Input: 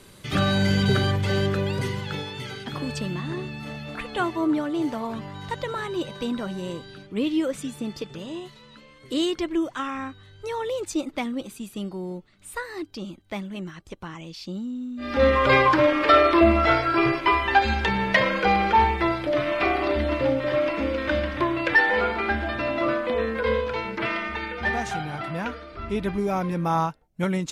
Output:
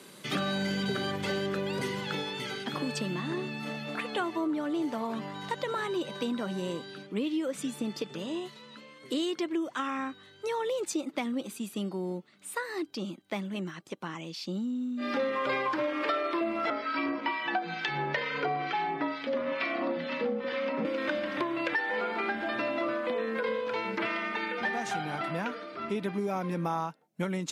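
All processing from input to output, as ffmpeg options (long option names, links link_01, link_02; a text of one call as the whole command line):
ffmpeg -i in.wav -filter_complex "[0:a]asettb=1/sr,asplit=3[link_01][link_02][link_03];[link_01]atrim=end=16.704[link_04];[link_02]atrim=start=16.7:end=20.85,asetpts=PTS-STARTPTS,afade=type=in:duration=0.004:curve=qsin,afade=type=out:start_time=4.146:duration=0.004:curve=qsin,lowpass=frequency=6000:width=0.5412,lowpass=frequency=6000:width=1.3066,acrossover=split=1500[link_05][link_06];[link_05]aeval=exprs='val(0)*(1-0.7/2+0.7/2*cos(2*PI*2.2*n/s))':channel_layout=same[link_07];[link_06]aeval=exprs='val(0)*(1-0.7/2-0.7/2*cos(2*PI*2.2*n/s))':channel_layout=same[link_08];[link_07][link_08]amix=inputs=2:normalize=0,afreqshift=-52[link_09];[link_03]atrim=start=20.846[link_10];[link_04][link_09]acrossfade=duration=0.004:curve1=hsin:curve2=qsin[link_11];[link_11][link_10]acrossfade=duration=0.004:curve1=qsin:curve2=hsin,highpass=frequency=170:width=0.5412,highpass=frequency=170:width=1.3066,acompressor=threshold=-28dB:ratio=6" out.wav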